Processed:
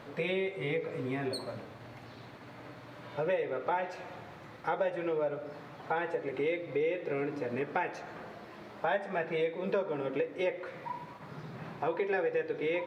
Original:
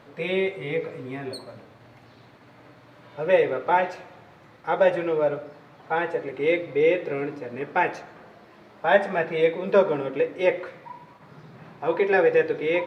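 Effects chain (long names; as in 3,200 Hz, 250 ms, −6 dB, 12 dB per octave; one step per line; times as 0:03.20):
downward compressor 4 to 1, threshold −33 dBFS, peak gain reduction 17.5 dB
level +2 dB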